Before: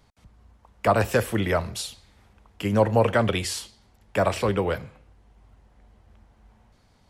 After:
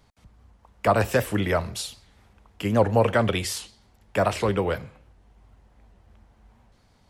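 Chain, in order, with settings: warped record 78 rpm, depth 160 cents

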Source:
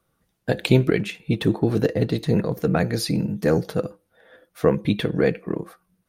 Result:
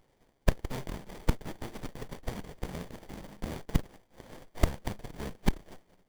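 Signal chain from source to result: formants flattened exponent 0.1; Chebyshev shaper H 6 -16 dB, 8 -27 dB, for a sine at -0.5 dBFS; inverted gate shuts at -15 dBFS, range -28 dB; sliding maximum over 33 samples; trim +7 dB

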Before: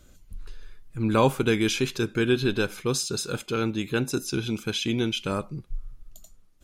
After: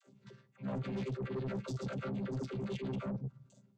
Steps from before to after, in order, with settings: vocoder on a held chord bare fifth, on C3; in parallel at 0 dB: level held to a coarse grid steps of 15 dB; on the sum: granular stretch 0.57×, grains 112 ms; phase dispersion lows, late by 69 ms, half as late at 420 Hz; reverse; compression 6:1, threshold -32 dBFS, peak gain reduction 14.5 dB; reverse; saturation -34.5 dBFS, distortion -11 dB; trim +1 dB

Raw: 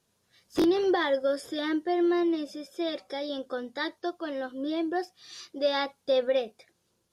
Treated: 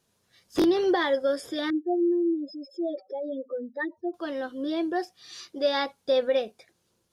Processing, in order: 1.70–4.14 s: spectral contrast enhancement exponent 3.1; trim +1.5 dB

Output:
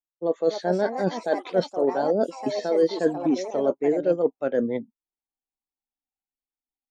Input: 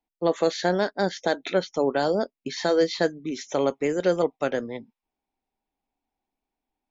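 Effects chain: reverse; compression 10:1, threshold -29 dBFS, peak gain reduction 13.5 dB; reverse; ever faster or slower copies 328 ms, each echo +4 st, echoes 3, each echo -6 dB; spectral contrast expander 1.5:1; trim +8.5 dB

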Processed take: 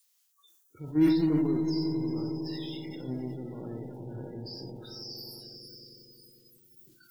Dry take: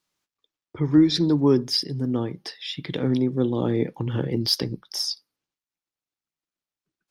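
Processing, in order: zero-crossing glitches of -14.5 dBFS; peak limiter -15.5 dBFS, peak gain reduction 8 dB; bass shelf 400 Hz +3.5 dB; gate -16 dBFS, range -28 dB; echo with a slow build-up 91 ms, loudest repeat 5, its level -12 dB; algorithmic reverb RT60 0.43 s, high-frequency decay 0.55×, pre-delay 25 ms, DRR 4.5 dB; spectral noise reduction 30 dB; time-frequency box 0.32–0.80 s, 1.8–5.6 kHz -9 dB; decay stretcher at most 46 dB/s; trim +9 dB

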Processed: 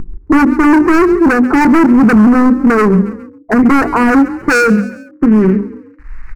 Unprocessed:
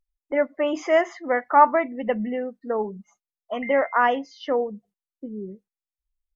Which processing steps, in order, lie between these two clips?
dead-time distortion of 0.11 ms; low-pass sweep 350 Hz -> 1.9 kHz, 4.35–5.39 s; in parallel at -2 dB: upward compressor, threshold -24 dBFS; on the sum: hum notches 50/100/150/200/250/300/350/400/450 Hz; overload inside the chain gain 24.5 dB; static phaser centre 1.4 kHz, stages 4; on a send: frequency-shifting echo 137 ms, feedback 42%, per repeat +31 Hz, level -20 dB; on the sum: loudness maximiser +29.5 dB; loudspeaker Doppler distortion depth 0.13 ms; trim -1 dB

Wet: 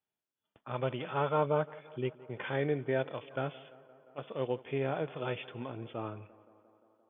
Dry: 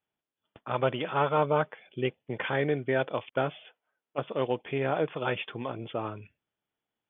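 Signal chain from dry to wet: tape echo 173 ms, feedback 79%, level -20 dB, low-pass 2.5 kHz; harmonic-percussive split percussive -8 dB; trim -2.5 dB

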